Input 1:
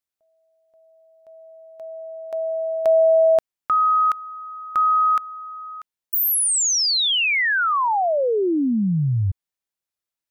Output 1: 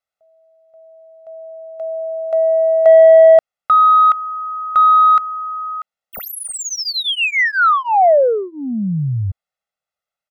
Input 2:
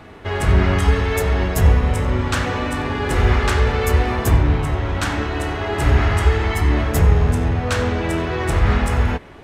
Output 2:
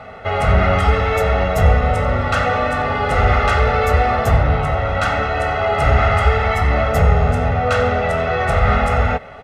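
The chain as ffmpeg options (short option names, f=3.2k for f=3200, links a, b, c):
-filter_complex "[0:a]asplit=2[a][b];[b]highpass=f=720:p=1,volume=16dB,asoftclip=type=tanh:threshold=-2.5dB[c];[a][c]amix=inputs=2:normalize=0,lowpass=f=1k:p=1,volume=-6dB,aecho=1:1:1.5:0.96,volume=-1dB"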